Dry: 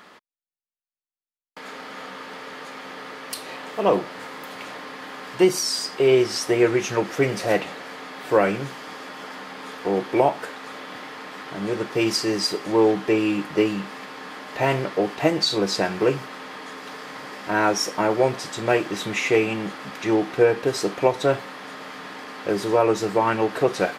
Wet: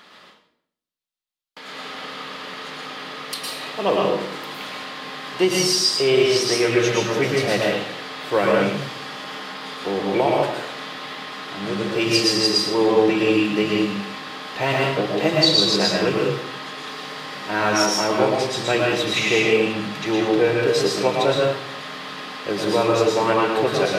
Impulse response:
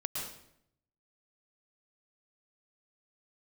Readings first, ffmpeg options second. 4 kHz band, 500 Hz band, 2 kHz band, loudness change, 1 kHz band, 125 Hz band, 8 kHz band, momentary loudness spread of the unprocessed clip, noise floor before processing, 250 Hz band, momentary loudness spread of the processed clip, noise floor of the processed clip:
+8.0 dB, +2.0 dB, +4.0 dB, +2.5 dB, +2.0 dB, +3.0 dB, +4.0 dB, 17 LU, under -85 dBFS, +2.0 dB, 15 LU, -54 dBFS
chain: -filter_complex "[0:a]equalizer=f=3.7k:w=1.2:g=8.5[a];[1:a]atrim=start_sample=2205[b];[a][b]afir=irnorm=-1:irlink=0,volume=-1dB"

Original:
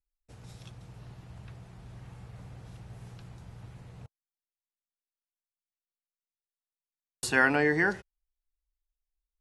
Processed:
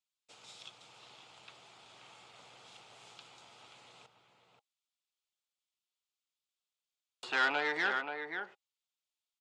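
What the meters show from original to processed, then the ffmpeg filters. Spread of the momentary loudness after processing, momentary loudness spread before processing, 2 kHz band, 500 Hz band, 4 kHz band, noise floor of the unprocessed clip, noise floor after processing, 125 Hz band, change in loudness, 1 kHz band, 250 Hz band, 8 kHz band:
21 LU, 14 LU, -5.0 dB, -10.0 dB, +2.5 dB, under -85 dBFS, under -85 dBFS, -25.0 dB, -7.0 dB, -2.5 dB, -15.5 dB, -13.5 dB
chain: -filter_complex "[0:a]acrossover=split=3300[a][b];[b]acompressor=threshold=-53dB:ratio=4:attack=1:release=60[c];[a][c]amix=inputs=2:normalize=0,bandreject=f=810:w=20,acrossover=split=600|2500[d][e][f];[d]alimiter=level_in=3dB:limit=-24dB:level=0:latency=1,volume=-3dB[g];[f]acompressor=threshold=-55dB:ratio=6[h];[g][e][h]amix=inputs=3:normalize=0,aexciter=amount=2.2:drive=7.8:freq=2.2k,asplit=2[i][j];[j]adelay=530.6,volume=-7dB,highshelf=f=4k:g=-11.9[k];[i][k]amix=inputs=2:normalize=0,aeval=exprs='(tanh(15.8*val(0)+0.65)-tanh(0.65))/15.8':c=same,highpass=470,equalizer=f=840:t=q:w=4:g=5,equalizer=f=1.3k:t=q:w=4:g=7,equalizer=f=1.8k:t=q:w=4:g=-4,equalizer=f=3.4k:t=q:w=4:g=5,equalizer=f=5.8k:t=q:w=4:g=-6,lowpass=f=7k:w=0.5412,lowpass=f=7k:w=1.3066"

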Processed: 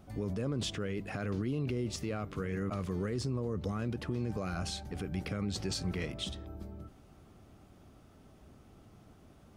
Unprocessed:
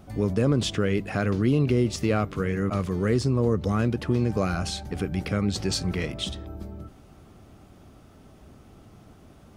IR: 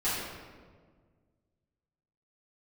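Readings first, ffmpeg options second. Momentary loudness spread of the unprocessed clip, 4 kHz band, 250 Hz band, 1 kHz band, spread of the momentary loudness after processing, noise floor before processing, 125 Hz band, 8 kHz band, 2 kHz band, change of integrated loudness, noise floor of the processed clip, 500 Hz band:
9 LU, -8.0 dB, -11.0 dB, -10.5 dB, 5 LU, -52 dBFS, -10.5 dB, -8.0 dB, -10.0 dB, -10.5 dB, -59 dBFS, -11.5 dB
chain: -af "alimiter=limit=-18.5dB:level=0:latency=1:release=33,volume=-7dB"

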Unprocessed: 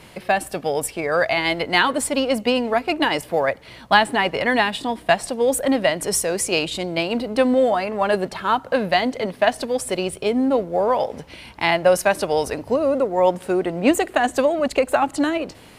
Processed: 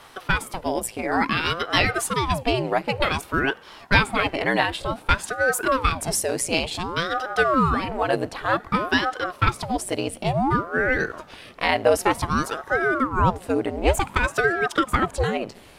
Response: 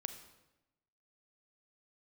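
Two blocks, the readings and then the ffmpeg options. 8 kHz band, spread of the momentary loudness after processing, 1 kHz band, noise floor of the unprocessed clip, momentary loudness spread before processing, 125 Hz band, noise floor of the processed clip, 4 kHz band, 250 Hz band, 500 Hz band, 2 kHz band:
-2.5 dB, 6 LU, -1.5 dB, -45 dBFS, 6 LU, +7.0 dB, -47 dBFS, -2.5 dB, -4.0 dB, -5.5 dB, +0.5 dB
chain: -filter_complex "[0:a]asplit=2[a][b];[1:a]atrim=start_sample=2205[c];[b][c]afir=irnorm=-1:irlink=0,volume=-13.5dB[d];[a][d]amix=inputs=2:normalize=0,aeval=exprs='val(0)*sin(2*PI*540*n/s+540*0.9/0.55*sin(2*PI*0.55*n/s))':c=same,volume=-1dB"

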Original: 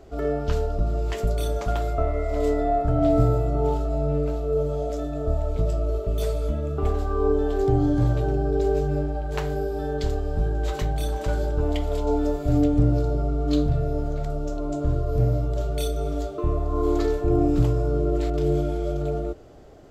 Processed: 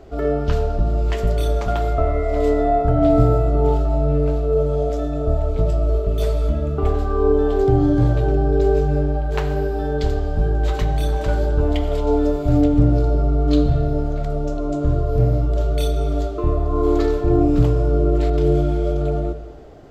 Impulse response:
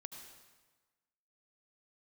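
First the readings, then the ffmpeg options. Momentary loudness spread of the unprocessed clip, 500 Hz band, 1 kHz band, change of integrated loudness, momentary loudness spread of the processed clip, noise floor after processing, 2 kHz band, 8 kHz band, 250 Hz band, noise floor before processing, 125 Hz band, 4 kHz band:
7 LU, +5.0 dB, +5.0 dB, +5.0 dB, 6 LU, -24 dBFS, +5.0 dB, n/a, +5.0 dB, -31 dBFS, +5.0 dB, +3.5 dB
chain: -filter_complex "[0:a]asplit=2[a][b];[1:a]atrim=start_sample=2205,lowpass=5.6k[c];[b][c]afir=irnorm=-1:irlink=0,volume=3dB[d];[a][d]amix=inputs=2:normalize=0"

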